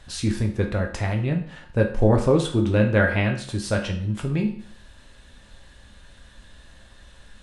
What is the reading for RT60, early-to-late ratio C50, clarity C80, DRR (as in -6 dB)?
0.50 s, 9.0 dB, 13.0 dB, 1.5 dB